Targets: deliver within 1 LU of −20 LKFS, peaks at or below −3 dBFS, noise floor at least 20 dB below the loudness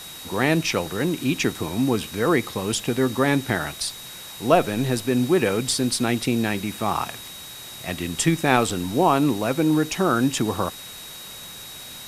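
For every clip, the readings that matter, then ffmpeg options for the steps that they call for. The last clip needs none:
interfering tone 3,800 Hz; level of the tone −40 dBFS; background noise floor −39 dBFS; target noise floor −43 dBFS; integrated loudness −22.5 LKFS; sample peak −2.0 dBFS; target loudness −20.0 LKFS
→ -af "bandreject=frequency=3800:width=30"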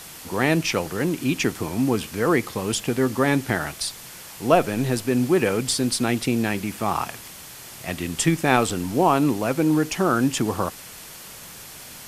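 interfering tone none found; background noise floor −41 dBFS; target noise floor −43 dBFS
→ -af "afftdn=noise_reduction=6:noise_floor=-41"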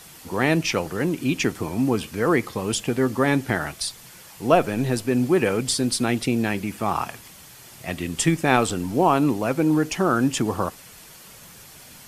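background noise floor −46 dBFS; integrated loudness −23.0 LKFS; sample peak −2.0 dBFS; target loudness −20.0 LKFS
→ -af "volume=3dB,alimiter=limit=-3dB:level=0:latency=1"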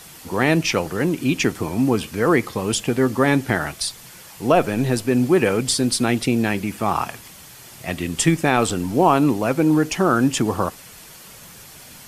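integrated loudness −20.0 LKFS; sample peak −3.0 dBFS; background noise floor −43 dBFS

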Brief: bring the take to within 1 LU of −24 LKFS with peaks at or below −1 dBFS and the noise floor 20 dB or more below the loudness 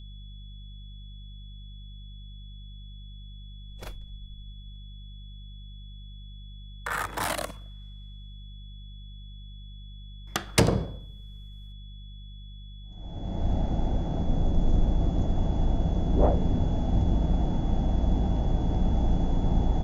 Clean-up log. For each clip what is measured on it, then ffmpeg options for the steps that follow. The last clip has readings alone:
mains hum 50 Hz; hum harmonics up to 200 Hz; level of the hum −40 dBFS; interfering tone 3,400 Hz; level of the tone −53 dBFS; integrated loudness −28.0 LKFS; sample peak −7.0 dBFS; target loudness −24.0 LKFS
→ -af "bandreject=frequency=50:width_type=h:width=4,bandreject=frequency=100:width_type=h:width=4,bandreject=frequency=150:width_type=h:width=4,bandreject=frequency=200:width_type=h:width=4"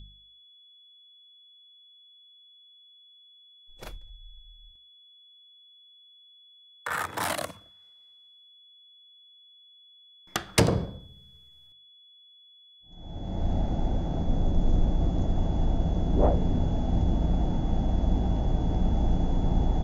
mains hum none found; interfering tone 3,400 Hz; level of the tone −53 dBFS
→ -af "bandreject=frequency=3400:width=30"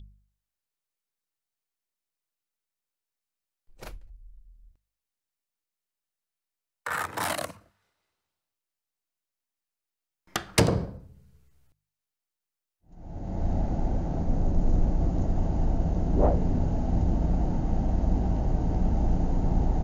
interfering tone none found; integrated loudness −28.5 LKFS; sample peak −6.5 dBFS; target loudness −24.0 LKFS
→ -af "volume=4.5dB"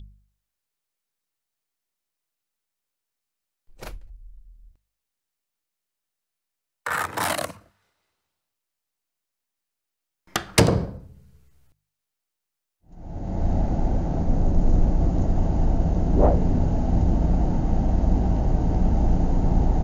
integrated loudness −24.0 LKFS; sample peak −2.0 dBFS; background noise floor −84 dBFS

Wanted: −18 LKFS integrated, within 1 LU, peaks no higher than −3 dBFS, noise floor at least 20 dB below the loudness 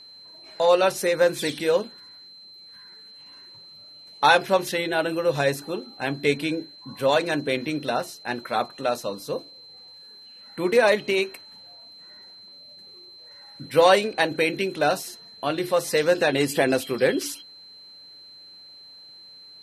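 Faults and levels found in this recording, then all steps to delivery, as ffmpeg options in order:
interfering tone 4,100 Hz; level of the tone −44 dBFS; integrated loudness −23.5 LKFS; sample peak −3.5 dBFS; target loudness −18.0 LKFS
→ -af "bandreject=frequency=4100:width=30"
-af "volume=5.5dB,alimiter=limit=-3dB:level=0:latency=1"

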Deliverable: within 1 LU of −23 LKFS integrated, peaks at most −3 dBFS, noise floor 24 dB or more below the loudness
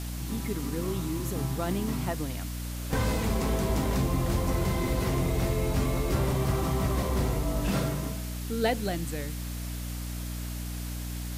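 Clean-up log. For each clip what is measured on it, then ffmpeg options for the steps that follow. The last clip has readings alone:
mains hum 60 Hz; hum harmonics up to 300 Hz; level of the hum −32 dBFS; background noise floor −35 dBFS; target noise floor −54 dBFS; integrated loudness −30.0 LKFS; sample peak −15.0 dBFS; target loudness −23.0 LKFS
→ -af "bandreject=frequency=60:width_type=h:width=4,bandreject=frequency=120:width_type=h:width=4,bandreject=frequency=180:width_type=h:width=4,bandreject=frequency=240:width_type=h:width=4,bandreject=frequency=300:width_type=h:width=4"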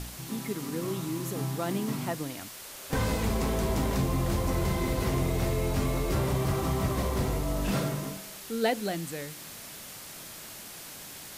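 mains hum none found; background noise floor −44 dBFS; target noise floor −55 dBFS
→ -af "afftdn=noise_reduction=11:noise_floor=-44"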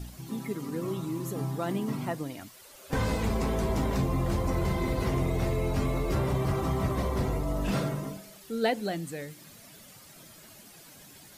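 background noise floor −52 dBFS; target noise floor −55 dBFS
→ -af "afftdn=noise_reduction=6:noise_floor=-52"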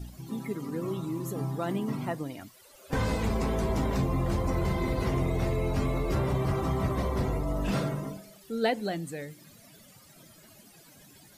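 background noise floor −55 dBFS; integrated loudness −30.5 LKFS; sample peak −15.5 dBFS; target loudness −23.0 LKFS
→ -af "volume=7.5dB"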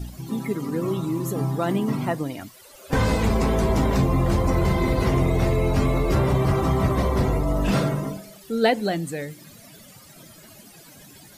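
integrated loudness −23.0 LKFS; sample peak −8.0 dBFS; background noise floor −48 dBFS

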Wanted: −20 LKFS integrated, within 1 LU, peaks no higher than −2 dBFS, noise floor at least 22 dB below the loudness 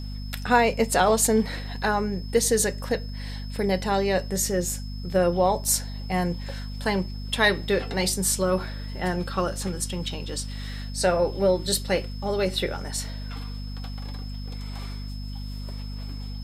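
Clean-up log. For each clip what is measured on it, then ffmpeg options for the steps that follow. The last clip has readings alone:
mains hum 50 Hz; hum harmonics up to 250 Hz; level of the hum −31 dBFS; interfering tone 5,200 Hz; level of the tone −45 dBFS; integrated loudness −25.0 LKFS; sample peak −6.0 dBFS; target loudness −20.0 LKFS
→ -af "bandreject=frequency=50:width_type=h:width=4,bandreject=frequency=100:width_type=h:width=4,bandreject=frequency=150:width_type=h:width=4,bandreject=frequency=200:width_type=h:width=4,bandreject=frequency=250:width_type=h:width=4"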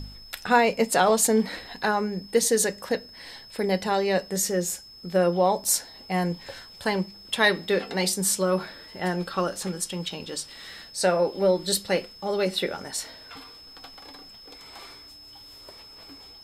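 mains hum none found; interfering tone 5,200 Hz; level of the tone −45 dBFS
→ -af "bandreject=frequency=5200:width=30"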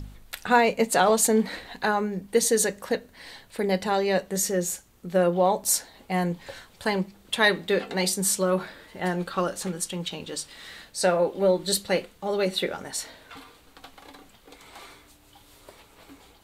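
interfering tone none found; integrated loudness −25.0 LKFS; sample peak −6.0 dBFS; target loudness −20.0 LKFS
→ -af "volume=5dB,alimiter=limit=-2dB:level=0:latency=1"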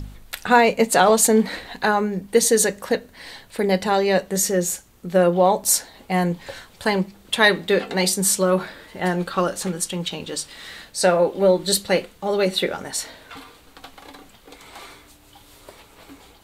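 integrated loudness −20.0 LKFS; sample peak −2.0 dBFS; background noise floor −51 dBFS

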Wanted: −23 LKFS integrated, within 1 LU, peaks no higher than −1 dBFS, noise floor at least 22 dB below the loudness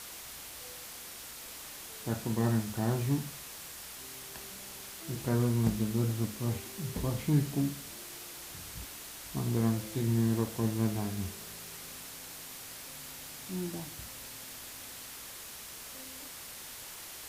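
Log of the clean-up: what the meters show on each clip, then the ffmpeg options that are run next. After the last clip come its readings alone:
background noise floor −46 dBFS; target noise floor −58 dBFS; integrated loudness −35.5 LKFS; sample peak −14.5 dBFS; target loudness −23.0 LKFS
→ -af "afftdn=noise_reduction=12:noise_floor=-46"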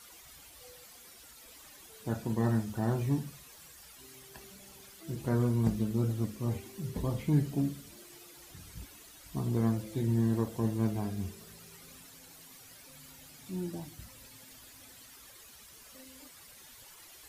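background noise floor −54 dBFS; target noise floor −55 dBFS
→ -af "afftdn=noise_reduction=6:noise_floor=-54"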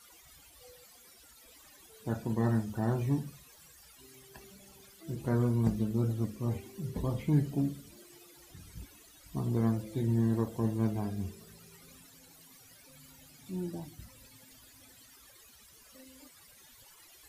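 background noise floor −58 dBFS; integrated loudness −32.5 LKFS; sample peak −15.0 dBFS; target loudness −23.0 LKFS
→ -af "volume=9.5dB"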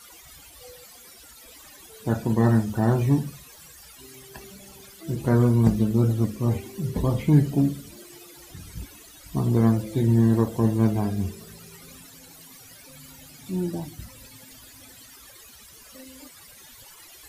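integrated loudness −23.0 LKFS; sample peak −5.5 dBFS; background noise floor −48 dBFS

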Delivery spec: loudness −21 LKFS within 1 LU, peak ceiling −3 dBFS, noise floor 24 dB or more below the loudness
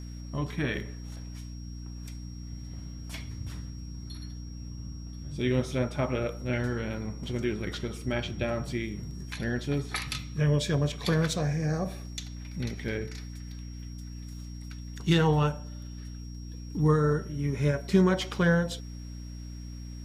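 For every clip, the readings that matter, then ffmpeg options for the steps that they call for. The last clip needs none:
mains hum 60 Hz; hum harmonics up to 300 Hz; level of the hum −37 dBFS; interfering tone 5,600 Hz; level of the tone −53 dBFS; integrated loudness −30.0 LKFS; sample peak −9.5 dBFS; target loudness −21.0 LKFS
→ -af "bandreject=frequency=60:width_type=h:width=6,bandreject=frequency=120:width_type=h:width=6,bandreject=frequency=180:width_type=h:width=6,bandreject=frequency=240:width_type=h:width=6,bandreject=frequency=300:width_type=h:width=6"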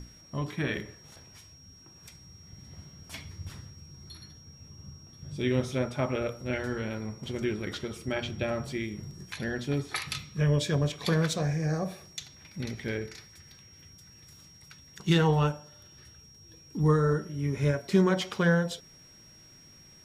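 mains hum none found; interfering tone 5,600 Hz; level of the tone −53 dBFS
→ -af "bandreject=frequency=5600:width=30"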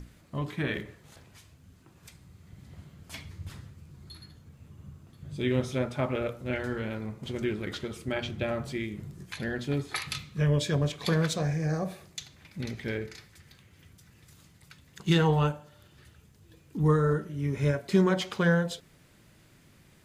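interfering tone none found; integrated loudness −29.5 LKFS; sample peak −10.0 dBFS; target loudness −21.0 LKFS
→ -af "volume=8.5dB,alimiter=limit=-3dB:level=0:latency=1"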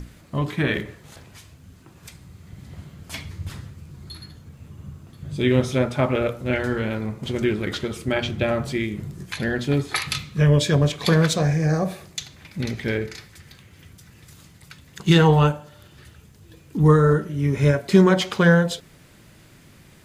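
integrated loudness −21.0 LKFS; sample peak −3.0 dBFS; background noise floor −51 dBFS

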